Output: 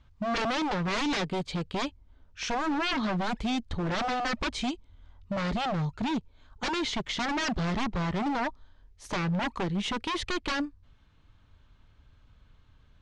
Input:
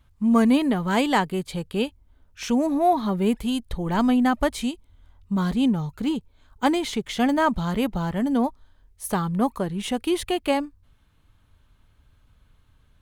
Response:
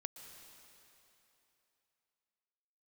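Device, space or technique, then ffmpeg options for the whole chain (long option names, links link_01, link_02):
synthesiser wavefolder: -af "aeval=exprs='0.0631*(abs(mod(val(0)/0.0631+3,4)-2)-1)':channel_layout=same,lowpass=frequency=6300:width=0.5412,lowpass=frequency=6300:width=1.3066"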